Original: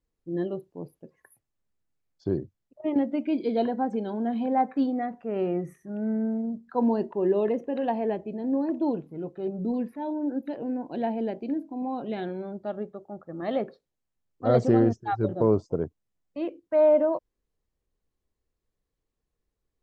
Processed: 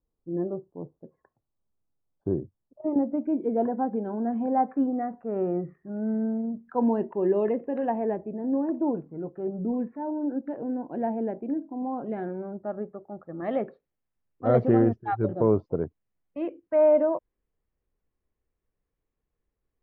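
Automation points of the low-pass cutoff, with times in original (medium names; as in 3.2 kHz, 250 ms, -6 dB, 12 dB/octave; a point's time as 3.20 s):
low-pass 24 dB/octave
2.95 s 1.2 kHz
4.03 s 1.6 kHz
6.10 s 1.6 kHz
6.68 s 2.4 kHz
7.48 s 2.4 kHz
8.32 s 1.7 kHz
12.64 s 1.7 kHz
13.64 s 2.6 kHz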